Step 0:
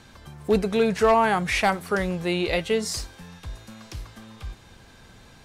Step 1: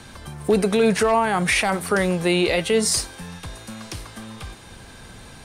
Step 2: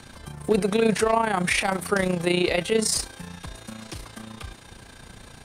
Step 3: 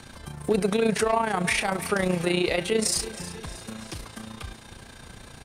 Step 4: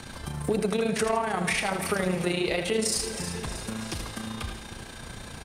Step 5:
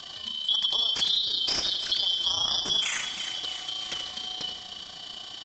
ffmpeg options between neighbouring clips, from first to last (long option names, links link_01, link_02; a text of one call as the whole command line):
ffmpeg -i in.wav -filter_complex "[0:a]equalizer=frequency=9100:width=7.1:gain=12.5,acrossover=split=160[link_01][link_02];[link_01]acompressor=threshold=-43dB:ratio=6[link_03];[link_02]alimiter=limit=-17.5dB:level=0:latency=1:release=39[link_04];[link_03][link_04]amix=inputs=2:normalize=0,volume=7.5dB" out.wav
ffmpeg -i in.wav -af "tremolo=f=29:d=0.667" out.wav
ffmpeg -i in.wav -af "aecho=1:1:317|634|951|1268:0.15|0.0748|0.0374|0.0187,alimiter=limit=-12.5dB:level=0:latency=1:release=118" out.wav
ffmpeg -i in.wav -af "acompressor=threshold=-32dB:ratio=2,aecho=1:1:81|162|243|324|405:0.376|0.158|0.0663|0.0278|0.0117,volume=3.5dB" out.wav
ffmpeg -i in.wav -af "afftfilt=real='real(if(lt(b,272),68*(eq(floor(b/68),0)*2+eq(floor(b/68),1)*3+eq(floor(b/68),2)*0+eq(floor(b/68),3)*1)+mod(b,68),b),0)':imag='imag(if(lt(b,272),68*(eq(floor(b/68),0)*2+eq(floor(b/68),1)*3+eq(floor(b/68),2)*0+eq(floor(b/68),3)*1)+mod(b,68),b),0)':win_size=2048:overlap=0.75,aresample=16000,aresample=44100" out.wav